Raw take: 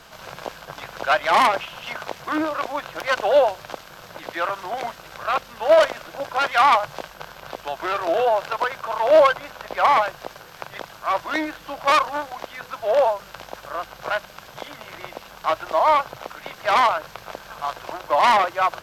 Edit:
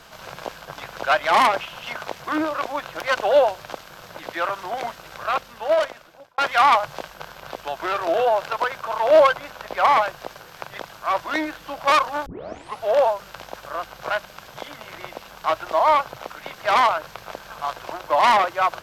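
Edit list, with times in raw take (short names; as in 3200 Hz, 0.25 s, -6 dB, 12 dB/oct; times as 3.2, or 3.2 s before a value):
5.25–6.38 fade out
12.26 tape start 0.58 s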